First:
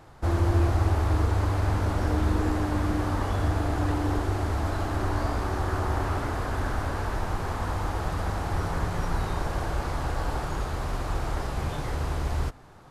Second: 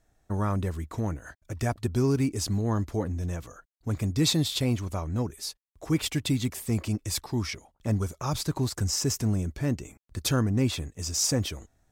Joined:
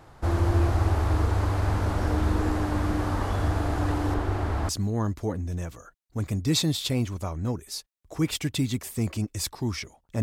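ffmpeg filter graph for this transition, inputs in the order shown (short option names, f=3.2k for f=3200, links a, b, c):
-filter_complex "[0:a]asettb=1/sr,asplit=3[a][b][c];[a]atrim=end=4.144[d];[b]atrim=start=4.14:end=4.69,asetpts=PTS-STARTPTS,afade=t=in:d=0.004:c=qsin,afade=t=out:st=0.546:d=0.004:c=qsin,acrossover=split=3800[e][f];[f]acompressor=threshold=-55dB:ratio=4:attack=1:release=60[g];[e][g]amix=inputs=2:normalize=0[h];[c]atrim=start=4.686[i];[d][h]acrossfade=d=0.004:c1=hsin:c2=qsin[j];[j][i]acrossfade=d=0.004:c1=qsin:c2=hsin,apad=whole_dur=10.22,atrim=end=10.22,atrim=end=4.692[k];[1:a]atrim=start=2.398:end=7.93[l];[k][l]acrossfade=d=0.004:c1=hsin:c2=hsin"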